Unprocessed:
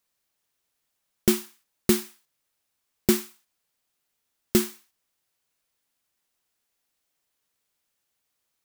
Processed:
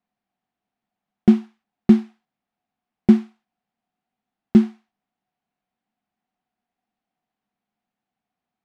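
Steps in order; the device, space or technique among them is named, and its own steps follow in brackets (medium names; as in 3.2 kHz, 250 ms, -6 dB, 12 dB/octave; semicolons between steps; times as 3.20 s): inside a cardboard box (low-pass 2.6 kHz 12 dB/octave; small resonant body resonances 210/730 Hz, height 17 dB, ringing for 45 ms); trim -4 dB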